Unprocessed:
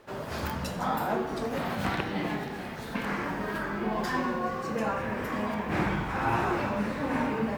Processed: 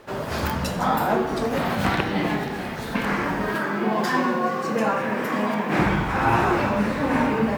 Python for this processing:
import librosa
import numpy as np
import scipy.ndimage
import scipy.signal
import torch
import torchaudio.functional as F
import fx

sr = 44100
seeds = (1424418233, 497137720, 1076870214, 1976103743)

y = fx.highpass(x, sr, hz=150.0, slope=24, at=(3.54, 5.79))
y = F.gain(torch.from_numpy(y), 7.5).numpy()